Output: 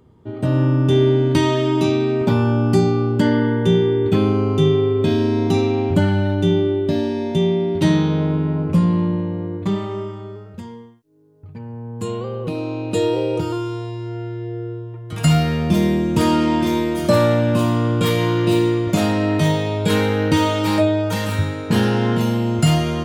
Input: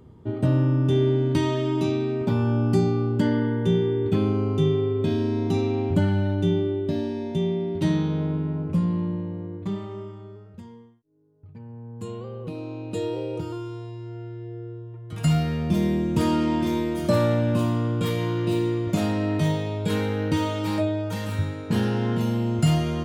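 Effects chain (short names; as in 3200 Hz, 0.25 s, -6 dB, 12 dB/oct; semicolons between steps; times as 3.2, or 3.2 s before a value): AGC gain up to 11.5 dB; low shelf 360 Hz -4.5 dB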